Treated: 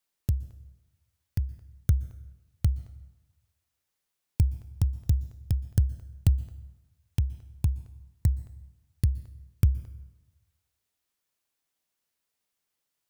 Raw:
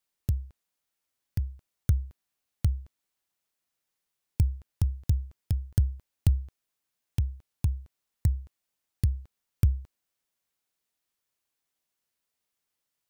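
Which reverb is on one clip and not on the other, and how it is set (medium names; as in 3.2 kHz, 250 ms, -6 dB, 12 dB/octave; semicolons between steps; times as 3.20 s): plate-style reverb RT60 1.1 s, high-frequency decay 0.7×, pre-delay 110 ms, DRR 18.5 dB; trim +1 dB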